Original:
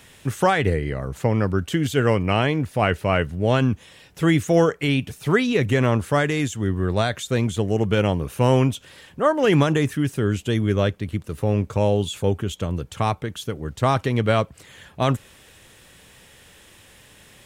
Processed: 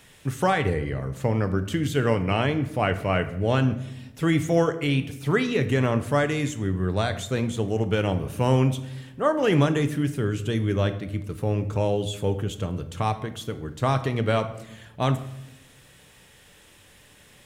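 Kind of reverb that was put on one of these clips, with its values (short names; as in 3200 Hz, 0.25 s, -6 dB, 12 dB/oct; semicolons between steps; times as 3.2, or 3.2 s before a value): shoebox room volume 310 m³, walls mixed, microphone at 0.38 m; gain -4 dB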